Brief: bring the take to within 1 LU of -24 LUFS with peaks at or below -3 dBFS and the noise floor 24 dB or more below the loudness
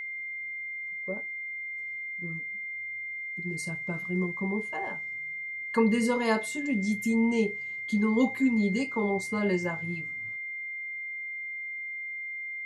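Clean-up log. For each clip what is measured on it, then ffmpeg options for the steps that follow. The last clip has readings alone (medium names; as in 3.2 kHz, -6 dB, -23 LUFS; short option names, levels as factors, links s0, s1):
steady tone 2.1 kHz; tone level -34 dBFS; loudness -30.0 LUFS; peak level -13.0 dBFS; loudness target -24.0 LUFS
-> -af "bandreject=f=2100:w=30"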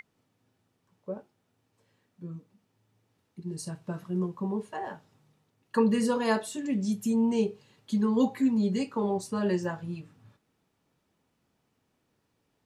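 steady tone not found; loudness -29.0 LUFS; peak level -13.5 dBFS; loudness target -24.0 LUFS
-> -af "volume=1.78"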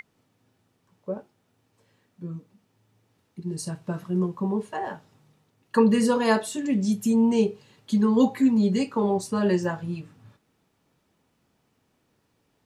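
loudness -24.5 LUFS; peak level -8.5 dBFS; noise floor -71 dBFS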